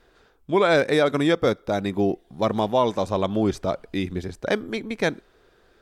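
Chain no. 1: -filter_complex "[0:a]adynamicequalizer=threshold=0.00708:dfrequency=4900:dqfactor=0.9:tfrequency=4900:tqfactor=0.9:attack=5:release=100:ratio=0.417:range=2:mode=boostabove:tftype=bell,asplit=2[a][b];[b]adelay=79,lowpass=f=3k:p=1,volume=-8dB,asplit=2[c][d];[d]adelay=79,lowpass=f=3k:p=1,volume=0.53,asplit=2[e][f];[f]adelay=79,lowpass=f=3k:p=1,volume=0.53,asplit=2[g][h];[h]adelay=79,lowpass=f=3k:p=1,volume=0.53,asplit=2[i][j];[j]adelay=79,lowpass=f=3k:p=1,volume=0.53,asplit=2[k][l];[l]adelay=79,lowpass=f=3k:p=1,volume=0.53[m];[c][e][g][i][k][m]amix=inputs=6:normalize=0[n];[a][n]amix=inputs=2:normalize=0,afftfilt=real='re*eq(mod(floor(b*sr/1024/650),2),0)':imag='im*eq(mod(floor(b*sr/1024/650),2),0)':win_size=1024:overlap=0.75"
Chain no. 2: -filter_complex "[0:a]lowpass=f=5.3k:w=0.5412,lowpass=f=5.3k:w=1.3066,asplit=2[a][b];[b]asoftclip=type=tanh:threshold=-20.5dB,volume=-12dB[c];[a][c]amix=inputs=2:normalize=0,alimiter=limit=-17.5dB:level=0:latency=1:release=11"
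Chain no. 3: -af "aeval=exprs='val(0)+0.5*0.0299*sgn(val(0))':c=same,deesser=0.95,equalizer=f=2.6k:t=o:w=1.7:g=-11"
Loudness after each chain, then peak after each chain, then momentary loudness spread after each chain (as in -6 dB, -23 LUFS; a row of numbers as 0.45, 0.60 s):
-23.5, -27.5, -25.0 LUFS; -7.0, -17.5, -10.5 dBFS; 9, 5, 13 LU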